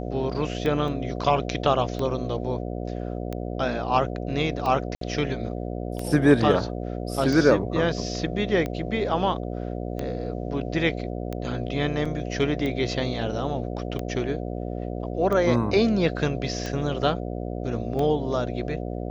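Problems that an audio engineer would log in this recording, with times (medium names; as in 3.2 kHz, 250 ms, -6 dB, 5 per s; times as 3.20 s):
buzz 60 Hz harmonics 12 -31 dBFS
tick 45 rpm -17 dBFS
0.88 s: dropout 2.6 ms
4.95–5.01 s: dropout 63 ms
12.05 s: dropout 4.9 ms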